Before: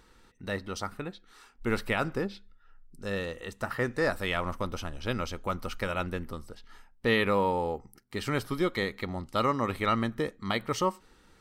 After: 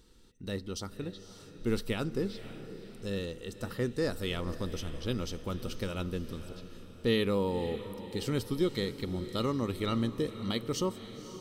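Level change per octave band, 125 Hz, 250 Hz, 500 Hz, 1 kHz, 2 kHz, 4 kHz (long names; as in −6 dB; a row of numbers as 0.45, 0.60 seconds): +0.5, 0.0, −2.5, −10.5, −10.0, −1.0 decibels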